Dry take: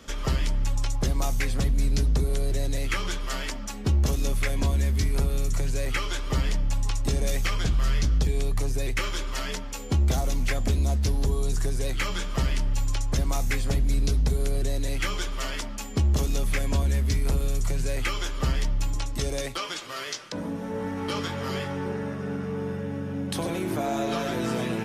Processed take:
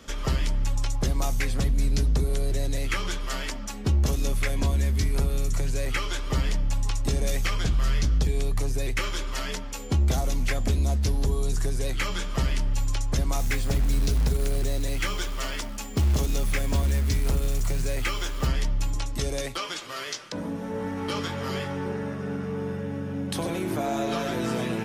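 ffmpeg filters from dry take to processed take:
ffmpeg -i in.wav -filter_complex "[0:a]asettb=1/sr,asplit=3[link_01][link_02][link_03];[link_01]atrim=end=13.394[link_04];[link_02]atrim=start=13.39:end=18.47,asetpts=PTS-STARTPTS,afade=type=in:duration=0.004:curve=qsin,afade=type=out:start_time=5.076:duration=0.004:curve=qsin,acrusher=bits=5:mode=log:mix=0:aa=0.000001[link_05];[link_03]atrim=start=18.466[link_06];[link_04][link_05]acrossfade=duration=0.004:curve1=hsin:curve2=qsin[link_07];[link_07][link_06]acrossfade=duration=0.004:curve1=qsin:curve2=hsin" out.wav

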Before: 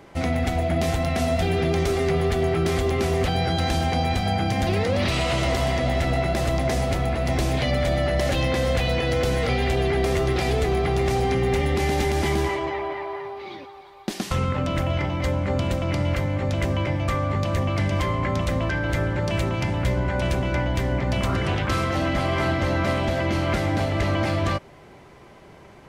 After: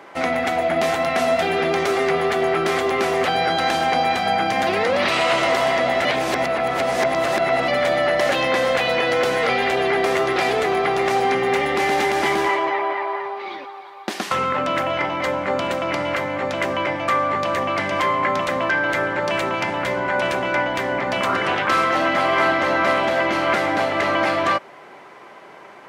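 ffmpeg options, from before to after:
ffmpeg -i in.wav -filter_complex "[0:a]asplit=3[link_01][link_02][link_03];[link_01]atrim=end=6.052[link_04];[link_02]atrim=start=6.048:end=7.682,asetpts=PTS-STARTPTS,areverse[link_05];[link_03]atrim=start=7.678[link_06];[link_04][link_05]acrossfade=duration=0.004:curve1=hsin:curve2=hsin[link_07];[link_07][link_06]acrossfade=duration=0.004:curve1=hsin:curve2=hsin,highpass=250,equalizer=frequency=1300:width=0.49:gain=10" out.wav

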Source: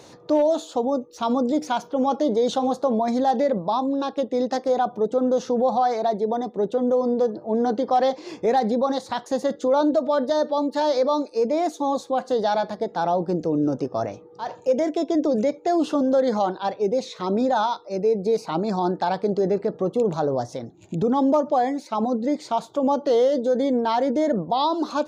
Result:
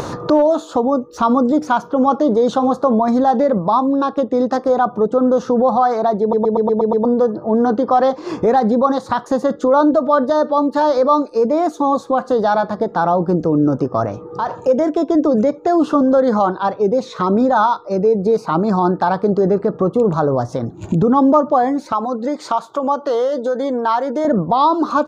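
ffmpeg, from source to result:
ffmpeg -i in.wav -filter_complex "[0:a]asettb=1/sr,asplit=3[link_01][link_02][link_03];[link_01]atrim=end=21.924[link_04];[link_02]atrim=start=21.92:end=24.25,asetpts=PTS-STARTPTS,afade=type=in:duration=0.004:curve=qsin,afade=type=out:start_time=2.326:duration=0.004:curve=qsin,highpass=frequency=810:poles=1[link_05];[link_03]atrim=start=24.246[link_06];[link_04][link_05]acrossfade=duration=0.004:curve1=hsin:curve2=qsin[link_07];[link_07][link_06]acrossfade=duration=0.004:curve1=qsin:curve2=hsin,asplit=8[link_08][link_09][link_10][link_11][link_12][link_13][link_14][link_15];[link_08]atrim=end=6.332[link_16];[link_09]atrim=start=6.208:end=6.332[link_17];[link_10]atrim=start=6.208:end=6.332[link_18];[link_11]atrim=start=6.208:end=6.332[link_19];[link_12]atrim=start=6.208:end=6.332[link_20];[link_13]atrim=start=6.208:end=6.332[link_21];[link_14]atrim=start=6.208:end=6.332[link_22];[link_15]atrim=start=7.048[link_23];[link_16][link_17]acrossfade=duration=0.004:curve1=hsin:curve2=hsin[link_24];[link_24][link_18]acrossfade=duration=0.004:curve1=hsin:curve2=hsin[link_25];[link_25][link_19]acrossfade=duration=0.004:curve1=hsin:curve2=hsin[link_26];[link_26][link_20]acrossfade=duration=0.004:curve1=hsin:curve2=hsin[link_27];[link_27][link_21]acrossfade=duration=0.004:curve1=hsin:curve2=hsin[link_28];[link_28][link_22]acrossfade=duration=0.004:curve1=hsin:curve2=hsin[link_29];[link_29][link_23]acrossfade=duration=0.004:curve1=hsin:curve2=hsin,firequalizer=gain_entry='entry(770,0);entry(1200,9);entry(2100,-6)':delay=0.05:min_phase=1,acompressor=mode=upward:threshold=-20dB:ratio=2.5,lowshelf=frequency=170:gain=8.5,volume=5dB" out.wav

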